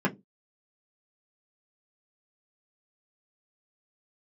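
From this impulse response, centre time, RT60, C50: 10 ms, no single decay rate, 20.0 dB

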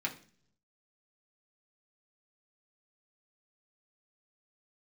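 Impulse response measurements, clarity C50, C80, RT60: 13.5 dB, 18.0 dB, 0.50 s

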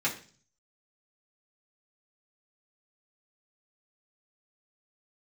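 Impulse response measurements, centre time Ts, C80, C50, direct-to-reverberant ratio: 17 ms, 15.0 dB, 11.0 dB, -6.0 dB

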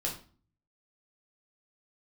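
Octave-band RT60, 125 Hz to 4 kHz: 0.80 s, 0.60 s, 0.40 s, 0.40 s, 0.35 s, 0.35 s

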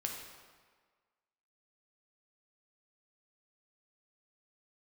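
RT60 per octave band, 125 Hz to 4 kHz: 1.3 s, 1.4 s, 1.5 s, 1.6 s, 1.4 s, 1.2 s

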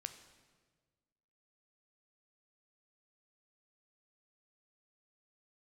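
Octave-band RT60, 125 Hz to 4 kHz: 1.9 s, 1.8 s, 1.6 s, 1.3 s, 1.3 s, 1.2 s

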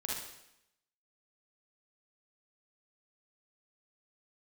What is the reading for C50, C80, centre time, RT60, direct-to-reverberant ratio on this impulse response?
-2.0 dB, 4.5 dB, 66 ms, 0.80 s, -4.0 dB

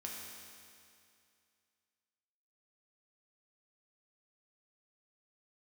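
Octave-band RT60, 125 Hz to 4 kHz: 2.4 s, 2.4 s, 2.4 s, 2.4 s, 2.4 s, 2.4 s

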